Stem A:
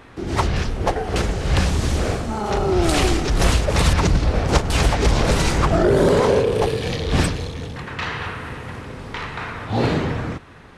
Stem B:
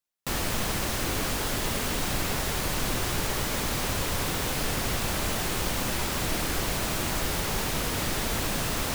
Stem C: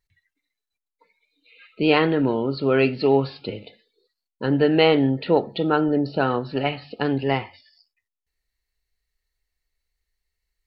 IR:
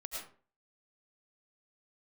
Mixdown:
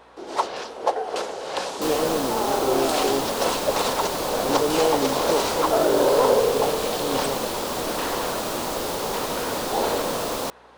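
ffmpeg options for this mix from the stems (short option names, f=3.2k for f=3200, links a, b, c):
-filter_complex "[0:a]highpass=690,bandreject=f=1.2k:w=18,aeval=exprs='val(0)+0.00126*(sin(2*PI*60*n/s)+sin(2*PI*2*60*n/s)/2+sin(2*PI*3*60*n/s)/3+sin(2*PI*4*60*n/s)/4+sin(2*PI*5*60*n/s)/5)':c=same,volume=-5.5dB[a];[1:a]lowshelf=f=230:g=-11,adelay=1550,volume=-1dB[b];[2:a]volume=-16dB[c];[a][b][c]amix=inputs=3:normalize=0,equalizer=f=250:t=o:w=1:g=6,equalizer=f=500:t=o:w=1:g=10,equalizer=f=1k:t=o:w=1:g=6,equalizer=f=2k:t=o:w=1:g=-6,equalizer=f=4k:t=o:w=1:g=3"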